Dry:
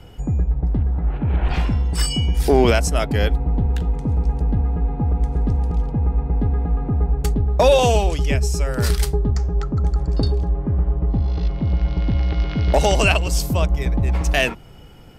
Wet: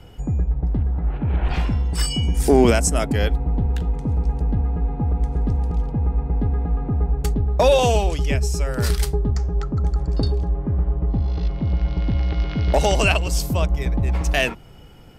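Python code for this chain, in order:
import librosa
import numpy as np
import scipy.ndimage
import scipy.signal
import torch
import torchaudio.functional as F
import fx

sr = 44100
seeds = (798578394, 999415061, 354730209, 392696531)

y = fx.graphic_eq(x, sr, hz=(250, 4000, 8000), db=(5, -5, 9), at=(2.23, 3.13))
y = y * 10.0 ** (-1.5 / 20.0)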